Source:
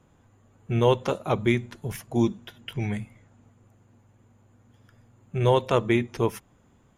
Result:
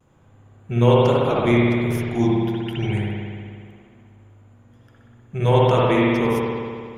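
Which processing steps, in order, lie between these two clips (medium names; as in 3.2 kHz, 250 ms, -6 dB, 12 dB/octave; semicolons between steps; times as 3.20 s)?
vibrato 0.31 Hz 18 cents; spring tank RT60 2.1 s, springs 59 ms, chirp 45 ms, DRR -5.5 dB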